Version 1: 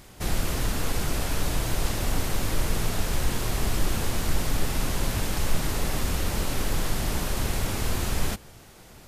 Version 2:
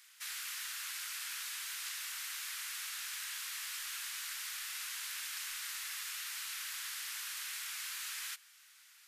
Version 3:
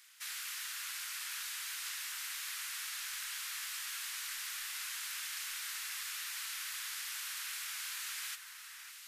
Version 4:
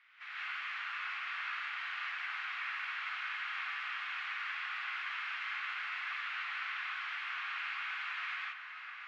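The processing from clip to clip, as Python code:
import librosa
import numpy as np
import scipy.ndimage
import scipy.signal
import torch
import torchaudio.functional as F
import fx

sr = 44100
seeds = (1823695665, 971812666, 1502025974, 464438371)

y1 = scipy.signal.sosfilt(scipy.signal.cheby2(4, 50, 560.0, 'highpass', fs=sr, output='sos'), x)
y1 = y1 * 10.0 ** (-6.5 / 20.0)
y2 = fx.echo_alternate(y1, sr, ms=554, hz=2100.0, feedback_pct=67, wet_db=-7.0)
y3 = fx.cabinet(y2, sr, low_hz=270.0, low_slope=12, high_hz=2300.0, hz=(310.0, 460.0, 930.0, 1700.0), db=(8, -5, -4, -4))
y3 = fx.rev_gated(y3, sr, seeds[0], gate_ms=200, shape='rising', drr_db=-6.5)
y3 = y3 * 10.0 ** (4.0 / 20.0)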